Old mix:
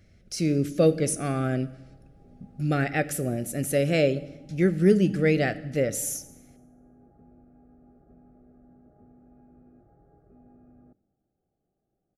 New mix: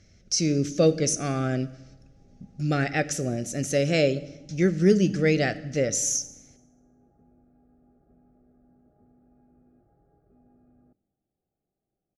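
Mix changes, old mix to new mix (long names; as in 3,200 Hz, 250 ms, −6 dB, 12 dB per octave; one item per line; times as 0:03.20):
background −5.5 dB
master: add low-pass with resonance 6,100 Hz, resonance Q 4.4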